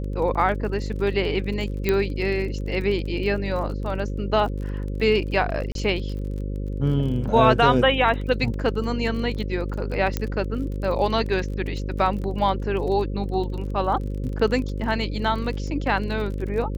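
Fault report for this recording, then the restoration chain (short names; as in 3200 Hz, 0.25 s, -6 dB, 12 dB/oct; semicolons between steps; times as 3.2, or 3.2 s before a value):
buzz 50 Hz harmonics 11 -28 dBFS
crackle 29/s -32 dBFS
1.89 pop -8 dBFS
5.72–5.75 gap 32 ms
10.17 pop -10 dBFS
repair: de-click; de-hum 50 Hz, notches 11; interpolate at 5.72, 32 ms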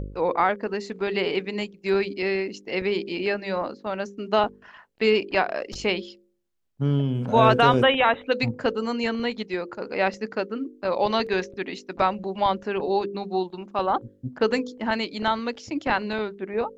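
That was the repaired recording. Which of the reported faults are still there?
1.89 pop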